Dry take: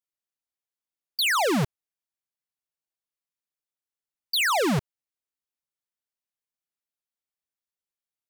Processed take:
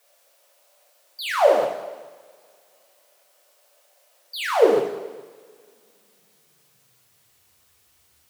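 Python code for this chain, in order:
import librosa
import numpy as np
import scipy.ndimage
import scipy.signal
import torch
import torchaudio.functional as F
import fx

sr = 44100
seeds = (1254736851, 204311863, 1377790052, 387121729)

p1 = fx.high_shelf(x, sr, hz=2300.0, db=-8.5)
p2 = fx.quant_dither(p1, sr, seeds[0], bits=8, dither='triangular')
p3 = p1 + (p2 * librosa.db_to_amplitude(-11.0))
p4 = fx.filter_sweep_highpass(p3, sr, from_hz=580.0, to_hz=77.0, start_s=4.19, end_s=7.66, q=6.8)
p5 = p4 + fx.echo_single(p4, sr, ms=418, db=-23.5, dry=0)
p6 = fx.rev_double_slope(p5, sr, seeds[1], early_s=0.79, late_s=3.0, knee_db=-25, drr_db=-0.5)
y = p6 * librosa.db_to_amplitude(-6.0)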